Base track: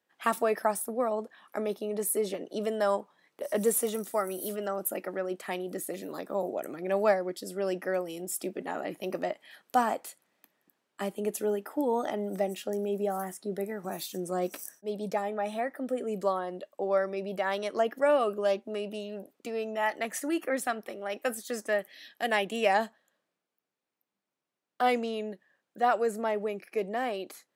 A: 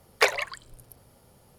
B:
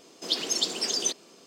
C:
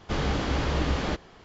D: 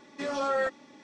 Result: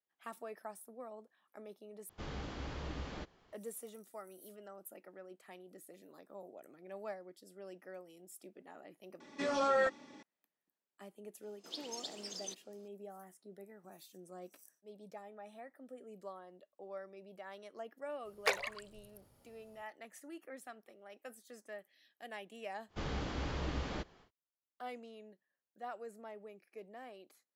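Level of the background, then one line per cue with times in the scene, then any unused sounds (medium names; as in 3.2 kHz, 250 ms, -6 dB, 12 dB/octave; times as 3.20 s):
base track -19.5 dB
2.09 s: replace with C -16.5 dB
9.20 s: replace with D -2.5 dB
11.42 s: add B -18 dB
18.25 s: add A -11 dB
22.87 s: add C -12 dB, fades 0.10 s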